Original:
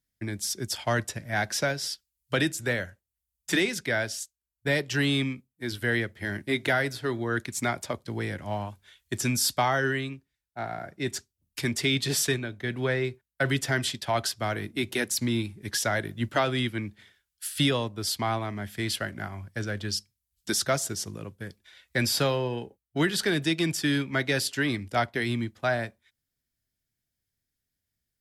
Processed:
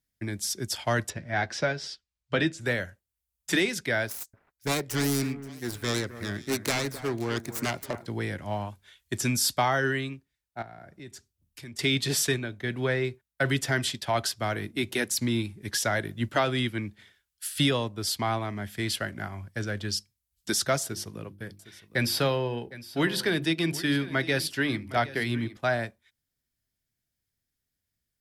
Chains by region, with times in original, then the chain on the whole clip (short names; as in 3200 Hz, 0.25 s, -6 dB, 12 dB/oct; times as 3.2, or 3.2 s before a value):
1.1–2.61 air absorption 120 m + doubler 12 ms -9.5 dB
4.07–8.06 self-modulated delay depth 0.38 ms + bell 3100 Hz -6.5 dB 0.8 oct + echo with dull and thin repeats by turns 0.263 s, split 1900 Hz, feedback 52%, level -13 dB
10.62–11.79 low shelf 180 Hz +5.5 dB + compressor 2.5:1, threshold -48 dBFS
20.83–25.57 bell 7100 Hz -7.5 dB 0.54 oct + notches 50/100/150/200/250/300/350 Hz + echo 0.761 s -17 dB
whole clip: dry